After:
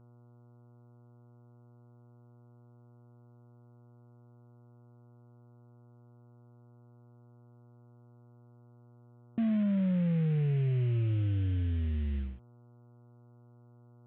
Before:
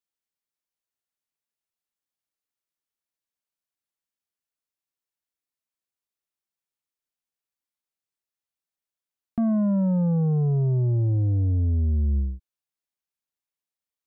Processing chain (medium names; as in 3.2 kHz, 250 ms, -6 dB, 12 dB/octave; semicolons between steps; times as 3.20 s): CVSD coder 16 kbps; high-pass 83 Hz; peaking EQ 920 Hz -11.5 dB 0.81 oct; mains buzz 120 Hz, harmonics 12, -52 dBFS -8 dB/octave; trim -5.5 dB